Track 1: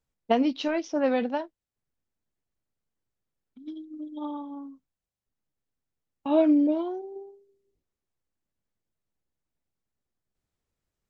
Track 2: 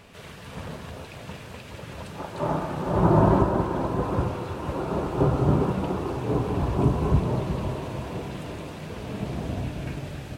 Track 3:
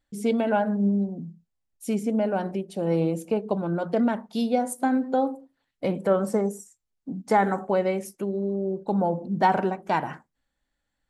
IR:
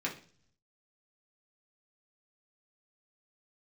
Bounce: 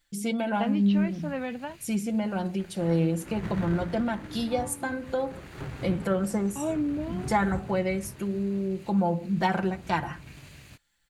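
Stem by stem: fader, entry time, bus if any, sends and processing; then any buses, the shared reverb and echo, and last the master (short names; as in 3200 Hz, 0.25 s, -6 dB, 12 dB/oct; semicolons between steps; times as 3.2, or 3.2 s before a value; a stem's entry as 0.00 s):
-1.5 dB, 0.30 s, no send, Chebyshev low-pass 2500 Hz, order 2
-12.5 dB, 0.40 s, no send, minimum comb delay 0.42 ms; notch 5200 Hz, Q 13
+0.5 dB, 0.00 s, no send, comb 5.8 ms, depth 62%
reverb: off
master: bell 530 Hz -7.5 dB 2.4 oct; mismatched tape noise reduction encoder only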